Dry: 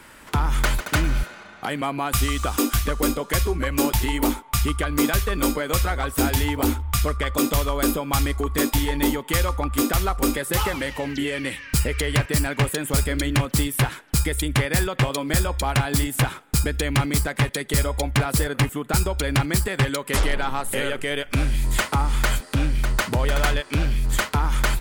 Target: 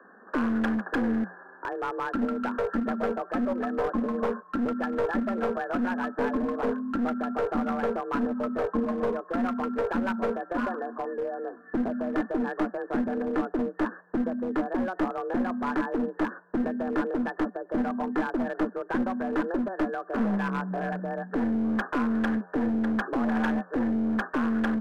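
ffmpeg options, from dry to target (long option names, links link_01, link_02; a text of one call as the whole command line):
ffmpeg -i in.wav -af "afreqshift=180,afftfilt=real='re*between(b*sr/4096,140,1800)':imag='im*between(b*sr/4096,140,1800)':win_size=4096:overlap=0.75,aeval=exprs='clip(val(0),-1,0.0841)':channel_layout=same,volume=-4.5dB" out.wav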